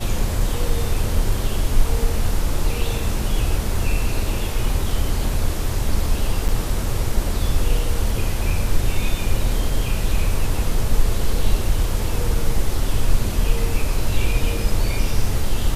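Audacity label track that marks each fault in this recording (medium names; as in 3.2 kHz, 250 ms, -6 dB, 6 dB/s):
6.480000	6.490000	dropout 7.6 ms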